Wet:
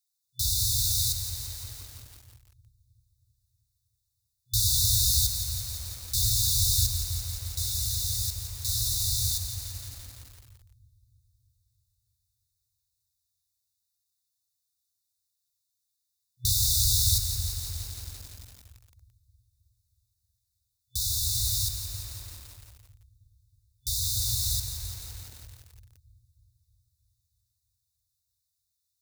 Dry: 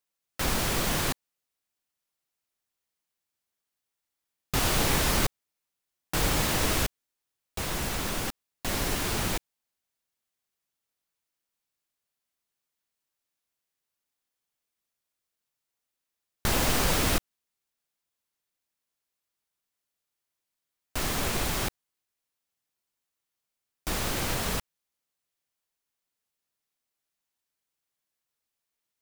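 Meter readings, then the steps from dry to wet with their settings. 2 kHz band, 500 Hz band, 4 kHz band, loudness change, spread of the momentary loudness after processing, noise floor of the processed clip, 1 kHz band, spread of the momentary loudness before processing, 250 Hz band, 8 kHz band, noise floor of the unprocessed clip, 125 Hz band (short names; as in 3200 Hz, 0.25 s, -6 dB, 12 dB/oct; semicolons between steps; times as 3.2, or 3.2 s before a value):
-22.0 dB, under -25 dB, +4.0 dB, +2.5 dB, 20 LU, -81 dBFS, under -20 dB, 11 LU, under -20 dB, +6.5 dB, under -85 dBFS, +3.5 dB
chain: HPF 67 Hz 12 dB/oct; FFT band-reject 120–3500 Hz; on a send: dark delay 0.317 s, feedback 58%, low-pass 470 Hz, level -6.5 dB; on the sum: lo-fi delay 0.17 s, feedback 80%, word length 8-bit, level -9 dB; gain +5.5 dB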